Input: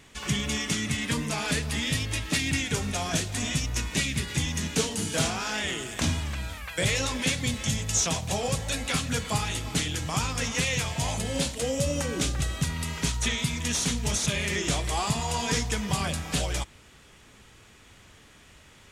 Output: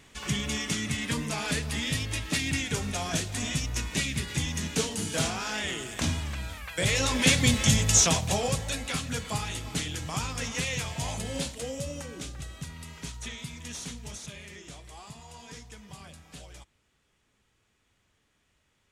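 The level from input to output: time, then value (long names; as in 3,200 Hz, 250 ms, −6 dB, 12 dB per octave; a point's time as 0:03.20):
0:06.76 −2 dB
0:07.34 +6 dB
0:07.88 +6 dB
0:08.90 −4 dB
0:11.34 −4 dB
0:12.21 −11.5 dB
0:13.88 −11.5 dB
0:14.67 −18.5 dB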